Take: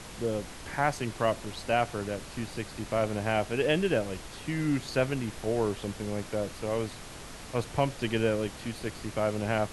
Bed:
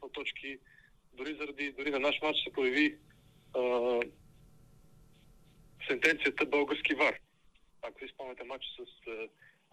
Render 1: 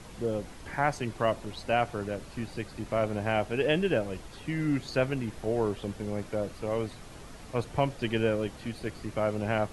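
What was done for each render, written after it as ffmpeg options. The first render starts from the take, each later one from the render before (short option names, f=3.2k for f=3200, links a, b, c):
-af "afftdn=nr=7:nf=-44"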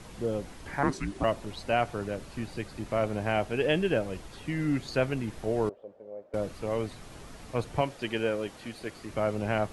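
-filter_complex "[0:a]asettb=1/sr,asplit=3[a][b][c];[a]atrim=end=0.834[d];[b]atrim=start=0.83:end=1.24,asetpts=PTS-STARTPTS,afade=t=in:d=0.004:c=qsin,afade=t=out:st=0.406:d=0.004:c=qsin,afreqshift=-410[e];[c]atrim=start=1.236[f];[d][e]acrossfade=d=0.004:c1=hsin:c2=qsin[g];[g][f]acrossfade=d=0.004:c1=qsin:c2=hsin,asettb=1/sr,asplit=3[h][i][j];[h]atrim=end=5.694[k];[i]atrim=start=5.69:end=6.34,asetpts=PTS-STARTPTS,afade=t=in:d=0.004:c=qsin,afade=t=out:st=0.646:d=0.004:c=qsin,bandpass=f=560:t=q:w=5.4[l];[j]atrim=start=6.336[m];[k][l]acrossfade=d=0.004:c1=hsin:c2=qsin[n];[n][m]acrossfade=d=0.004:c1=qsin:c2=hsin,asettb=1/sr,asplit=3[o][p][q];[o]atrim=end=7.814[r];[p]atrim=start=7.81:end=9.1,asetpts=PTS-STARTPTS,afade=t=in:d=0.004:c=qsin,afade=t=out:st=1.286:d=0.004:c=qsin,lowshelf=f=170:g=-12[s];[q]atrim=start=9.096[t];[r][s]acrossfade=d=0.004:c1=hsin:c2=qsin[u];[u][t]acrossfade=d=0.004:c1=qsin:c2=hsin"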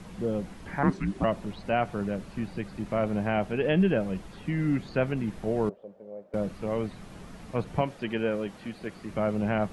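-filter_complex "[0:a]acrossover=split=3200[a][b];[b]acompressor=threshold=-58dB:ratio=4:attack=1:release=60[c];[a][c]amix=inputs=2:normalize=0,equalizer=f=190:w=3.4:g=10.5"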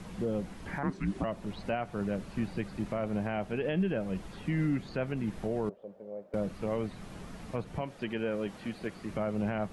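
-af "alimiter=limit=-22dB:level=0:latency=1:release=297"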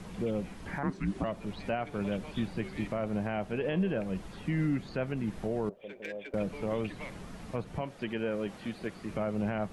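-filter_complex "[1:a]volume=-16.5dB[a];[0:a][a]amix=inputs=2:normalize=0"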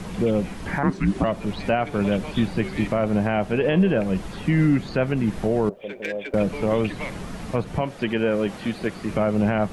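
-af "volume=11dB"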